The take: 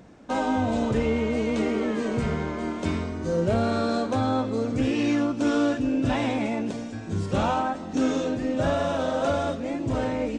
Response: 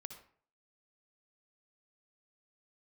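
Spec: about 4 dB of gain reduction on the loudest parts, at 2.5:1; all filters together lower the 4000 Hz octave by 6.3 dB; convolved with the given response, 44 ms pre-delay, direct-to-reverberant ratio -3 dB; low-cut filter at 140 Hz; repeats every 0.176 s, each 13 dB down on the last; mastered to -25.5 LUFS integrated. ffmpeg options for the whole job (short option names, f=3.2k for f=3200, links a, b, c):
-filter_complex "[0:a]highpass=140,equalizer=f=4k:t=o:g=-8.5,acompressor=threshold=-26dB:ratio=2.5,aecho=1:1:176|352|528:0.224|0.0493|0.0108,asplit=2[a][b];[1:a]atrim=start_sample=2205,adelay=44[c];[b][c]afir=irnorm=-1:irlink=0,volume=7.5dB[d];[a][d]amix=inputs=2:normalize=0,volume=-0.5dB"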